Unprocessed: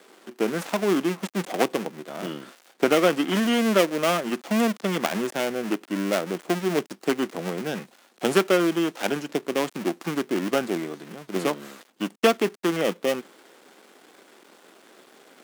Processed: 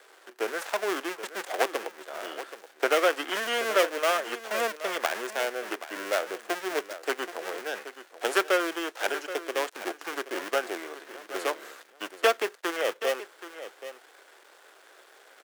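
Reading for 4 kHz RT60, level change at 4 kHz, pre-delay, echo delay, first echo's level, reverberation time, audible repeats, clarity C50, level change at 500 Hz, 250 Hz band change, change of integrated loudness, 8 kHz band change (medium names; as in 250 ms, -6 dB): no reverb, -2.0 dB, no reverb, 777 ms, -13.0 dB, no reverb, 1, no reverb, -4.5 dB, -14.5 dB, -4.0 dB, -2.5 dB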